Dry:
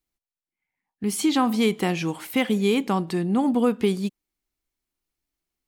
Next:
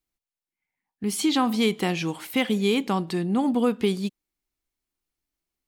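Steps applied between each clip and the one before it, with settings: dynamic bell 3.8 kHz, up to +4 dB, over -45 dBFS, Q 1.2; trim -1.5 dB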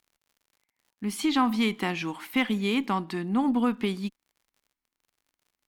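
graphic EQ 125/250/500/1000/2000/8000 Hz -7/+7/-6/+7/+5/-3 dB; crackle 72 per s -46 dBFS; Chebyshev shaper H 4 -30 dB, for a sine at -6.5 dBFS; trim -5.5 dB

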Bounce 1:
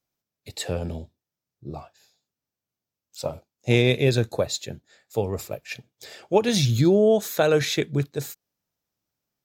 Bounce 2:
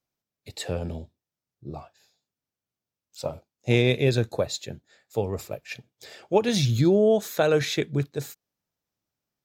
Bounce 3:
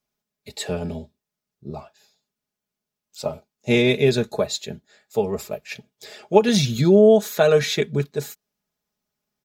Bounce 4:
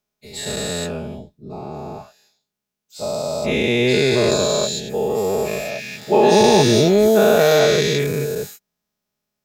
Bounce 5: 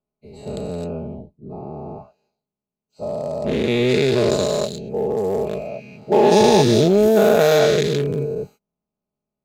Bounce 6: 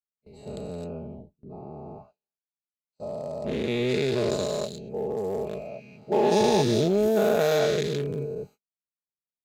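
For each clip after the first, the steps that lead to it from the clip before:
treble shelf 6.1 kHz -4 dB; trim -1.5 dB
comb 4.8 ms, depth 71%; trim +2.5 dB
every event in the spectrogram widened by 480 ms; trim -4.5 dB
local Wiener filter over 25 samples
gate with hold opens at -34 dBFS; trim -8 dB

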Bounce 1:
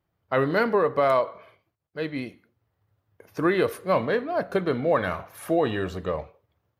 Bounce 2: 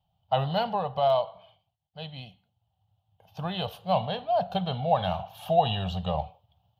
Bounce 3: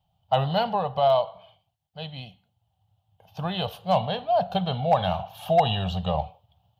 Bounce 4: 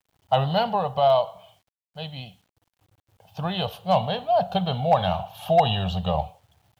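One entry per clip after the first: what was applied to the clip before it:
FFT filter 180 Hz 0 dB, 320 Hz -29 dB, 540 Hz -10 dB, 780 Hz +8 dB, 1.1 kHz -11 dB, 2.1 kHz -20 dB, 3 kHz +8 dB, 5.4 kHz -8 dB, 9.7 kHz -17 dB, 15 kHz -6 dB; gain riding within 4 dB 2 s; trim +2.5 dB
hard clipper -14 dBFS, distortion -24 dB; trim +3 dB
bit crusher 11-bit; trim +1.5 dB

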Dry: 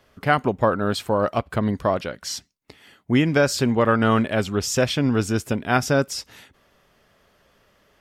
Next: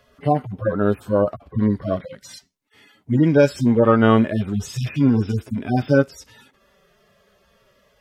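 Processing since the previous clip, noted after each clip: harmonic-percussive separation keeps harmonic; peaking EQ 350 Hz +3.5 dB 1.1 oct; trim +3.5 dB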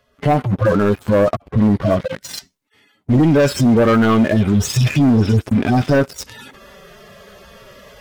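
waveshaping leveller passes 3; reverse; upward compressor, threshold -26 dBFS; reverse; loudness maximiser +9 dB; trim -7 dB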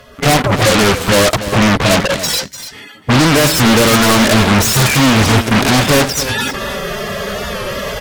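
in parallel at -5 dB: sine folder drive 19 dB, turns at -7.5 dBFS; on the sum: delay 291 ms -12 dB; warped record 45 rpm, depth 100 cents; trim +2 dB

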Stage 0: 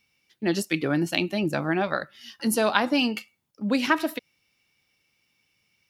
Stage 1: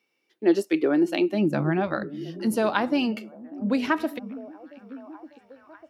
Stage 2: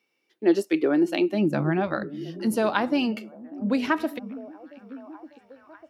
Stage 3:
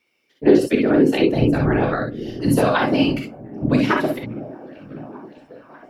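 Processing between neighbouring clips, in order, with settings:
treble shelf 2.2 kHz -9.5 dB; high-pass sweep 360 Hz -> 62 Hz, 1.23–2.03 s; repeats whose band climbs or falls 597 ms, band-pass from 200 Hz, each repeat 0.7 oct, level -12 dB
no audible change
whisper effect; gated-style reverb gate 80 ms rising, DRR 2 dB; trim +3.5 dB

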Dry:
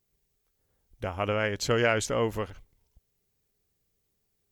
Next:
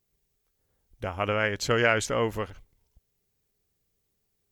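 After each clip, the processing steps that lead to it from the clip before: dynamic bell 1.7 kHz, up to +4 dB, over -37 dBFS, Q 0.88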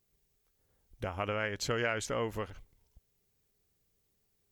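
compression 2:1, threshold -36 dBFS, peak gain reduction 10.5 dB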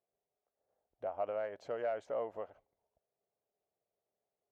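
saturation -23 dBFS, distortion -19 dB; band-pass filter 650 Hz, Q 4.3; trim +5.5 dB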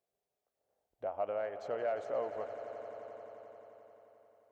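echo with a slow build-up 88 ms, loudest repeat 5, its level -15.5 dB; trim +1 dB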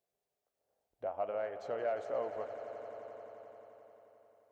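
flange 0.76 Hz, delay 4.7 ms, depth 8 ms, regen -82%; trim +4 dB

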